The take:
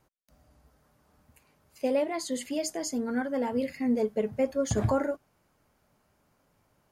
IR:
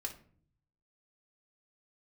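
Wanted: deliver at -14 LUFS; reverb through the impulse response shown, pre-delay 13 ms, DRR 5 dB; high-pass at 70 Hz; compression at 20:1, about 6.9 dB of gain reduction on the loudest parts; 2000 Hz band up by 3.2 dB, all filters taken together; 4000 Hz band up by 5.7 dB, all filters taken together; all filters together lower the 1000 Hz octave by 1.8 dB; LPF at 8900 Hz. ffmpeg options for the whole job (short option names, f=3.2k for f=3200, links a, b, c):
-filter_complex "[0:a]highpass=70,lowpass=8.9k,equalizer=f=1k:t=o:g=-3.5,equalizer=f=2k:t=o:g=3.5,equalizer=f=4k:t=o:g=7,acompressor=threshold=-28dB:ratio=20,asplit=2[a][b];[1:a]atrim=start_sample=2205,adelay=13[c];[b][c]afir=irnorm=-1:irlink=0,volume=-4dB[d];[a][d]amix=inputs=2:normalize=0,volume=18.5dB"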